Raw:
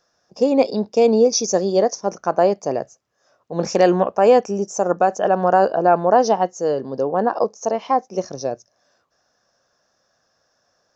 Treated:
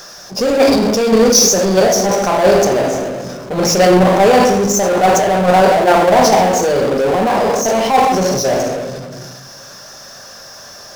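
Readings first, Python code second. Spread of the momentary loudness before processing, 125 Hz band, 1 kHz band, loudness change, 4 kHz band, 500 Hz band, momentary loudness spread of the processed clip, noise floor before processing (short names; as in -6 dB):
12 LU, +10.0 dB, +6.5 dB, +6.5 dB, +13.5 dB, +5.5 dB, 11 LU, -68 dBFS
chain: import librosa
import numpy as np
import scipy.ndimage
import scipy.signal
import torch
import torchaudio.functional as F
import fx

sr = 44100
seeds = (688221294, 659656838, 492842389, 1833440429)

y = fx.high_shelf(x, sr, hz=2700.0, db=8.0)
y = fx.room_shoebox(y, sr, seeds[0], volume_m3=390.0, walls='mixed', distance_m=1.2)
y = fx.level_steps(y, sr, step_db=11)
y = fx.power_curve(y, sr, exponent=0.5)
y = fx.sustainer(y, sr, db_per_s=29.0)
y = F.gain(torch.from_numpy(y), -1.5).numpy()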